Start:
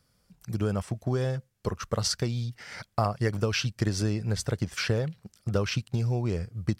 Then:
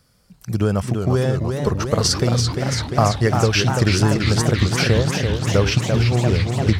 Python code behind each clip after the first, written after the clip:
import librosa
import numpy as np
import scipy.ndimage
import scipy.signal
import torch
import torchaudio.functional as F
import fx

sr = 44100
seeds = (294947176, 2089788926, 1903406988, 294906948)

y = fx.echo_warbled(x, sr, ms=342, feedback_pct=77, rate_hz=2.8, cents=199, wet_db=-5.5)
y = y * 10.0 ** (9.0 / 20.0)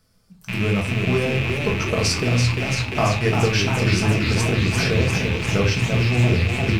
y = fx.rattle_buzz(x, sr, strikes_db=-26.0, level_db=-11.0)
y = fx.room_shoebox(y, sr, seeds[0], volume_m3=210.0, walls='furnished', distance_m=1.5)
y = y * 10.0 ** (-6.0 / 20.0)